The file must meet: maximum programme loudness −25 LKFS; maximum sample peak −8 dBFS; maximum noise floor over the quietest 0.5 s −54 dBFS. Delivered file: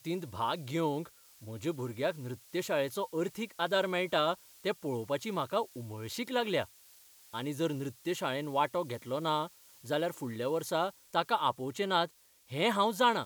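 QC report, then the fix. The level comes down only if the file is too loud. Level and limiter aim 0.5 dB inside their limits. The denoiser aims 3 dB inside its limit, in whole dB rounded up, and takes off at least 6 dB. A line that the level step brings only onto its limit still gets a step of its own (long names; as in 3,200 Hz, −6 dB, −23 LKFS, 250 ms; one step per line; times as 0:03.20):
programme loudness −33.5 LKFS: in spec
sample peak −14.5 dBFS: in spec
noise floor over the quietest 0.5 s −59 dBFS: in spec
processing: no processing needed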